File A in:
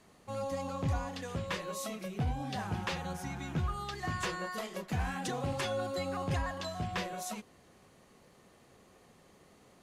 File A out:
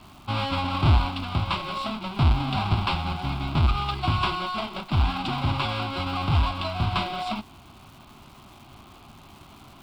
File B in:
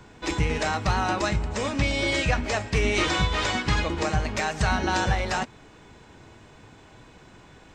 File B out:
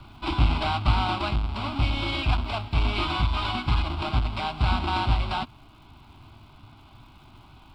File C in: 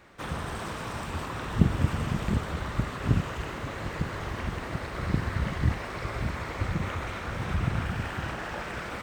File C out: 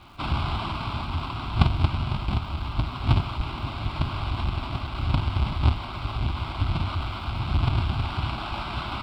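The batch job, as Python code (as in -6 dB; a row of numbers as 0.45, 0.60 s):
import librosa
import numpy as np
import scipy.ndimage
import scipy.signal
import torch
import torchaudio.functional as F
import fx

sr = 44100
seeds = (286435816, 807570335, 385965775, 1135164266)

y = fx.halfwave_hold(x, sr)
y = scipy.signal.sosfilt(scipy.signal.butter(4, 5900.0, 'lowpass', fs=sr, output='sos'), y)
y = fx.peak_eq(y, sr, hz=180.0, db=-7.5, octaves=0.45)
y = fx.rider(y, sr, range_db=10, speed_s=2.0)
y = fx.fixed_phaser(y, sr, hz=1800.0, stages=6)
y = fx.dmg_crackle(y, sr, seeds[0], per_s=470.0, level_db=-53.0)
y = y * 10.0 ** (-26 / 20.0) / np.sqrt(np.mean(np.square(y)))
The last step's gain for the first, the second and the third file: +9.5, -3.0, +1.0 dB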